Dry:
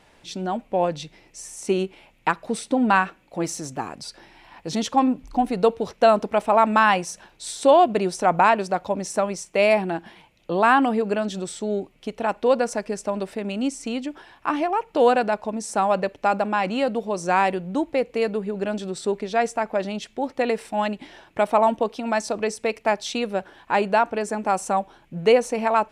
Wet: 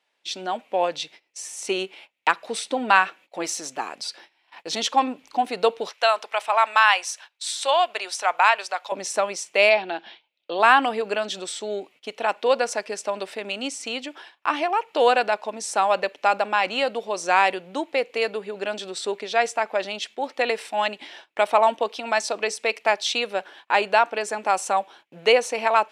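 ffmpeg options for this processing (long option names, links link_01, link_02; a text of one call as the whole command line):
ffmpeg -i in.wav -filter_complex "[0:a]asettb=1/sr,asplit=3[link_01][link_02][link_03];[link_01]atrim=end=5.894[link_04];[link_02]atrim=start=5.89:end=8.92,asetpts=PTS-STARTPTS,afade=type=in:duration=0.004:curve=qsin,afade=type=out:start_time=3.026:duration=0.004:curve=qsin,highpass=860[link_05];[link_03]atrim=start=8.916[link_06];[link_04][link_05]acrossfade=duration=0.004:curve1=hsin:curve2=qsin[link_07];[link_07][link_06]acrossfade=duration=0.004:curve1=qsin:curve2=hsin,asplit=3[link_08][link_09][link_10];[link_08]afade=type=out:start_time=9.69:duration=0.02[link_11];[link_09]highpass=210,equalizer=frequency=400:width_type=q:width=4:gain=-3,equalizer=frequency=1100:width_type=q:width=4:gain=-6,equalizer=frequency=1900:width_type=q:width=4:gain=-4,equalizer=frequency=3700:width_type=q:width=4:gain=4,lowpass=frequency=5200:width=0.5412,lowpass=frequency=5200:width=1.3066,afade=type=in:start_time=9.69:duration=0.02,afade=type=out:start_time=10.58:duration=0.02[link_12];[link_10]afade=type=in:start_time=10.58:duration=0.02[link_13];[link_11][link_12][link_13]amix=inputs=3:normalize=0,agate=range=-20dB:threshold=-46dB:ratio=16:detection=peak,highpass=430,equalizer=frequency=3300:width_type=o:width=1.8:gain=7.5" out.wav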